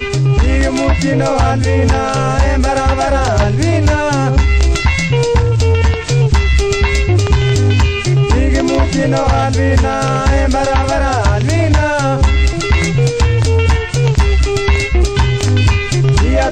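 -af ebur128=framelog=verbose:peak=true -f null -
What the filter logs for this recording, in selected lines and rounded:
Integrated loudness:
  I:         -13.1 LUFS
  Threshold: -23.1 LUFS
Loudness range:
  LRA:         0.6 LU
  Threshold: -33.1 LUFS
  LRA low:   -13.3 LUFS
  LRA high:  -12.7 LUFS
True peak:
  Peak:       -3.8 dBFS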